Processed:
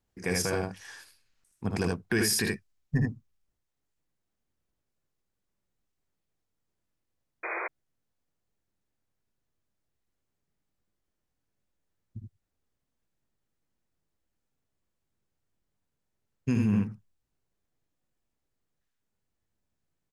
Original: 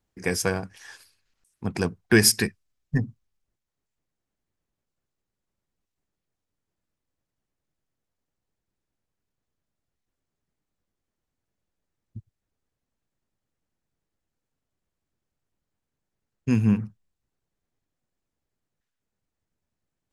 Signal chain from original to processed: early reflections 56 ms -9 dB, 77 ms -4 dB; painted sound noise, 7.43–7.68 s, 330–2500 Hz -31 dBFS; peak limiter -14.5 dBFS, peak gain reduction 10.5 dB; trim -2.5 dB

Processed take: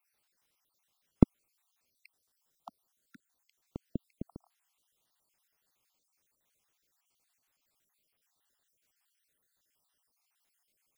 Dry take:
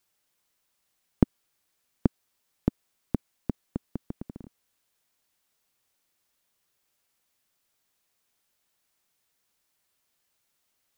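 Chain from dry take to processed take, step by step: random holes in the spectrogram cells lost 52%; 2.06–3.62 s: peaking EQ 2.4 kHz -10.5 dB 0.78 oct

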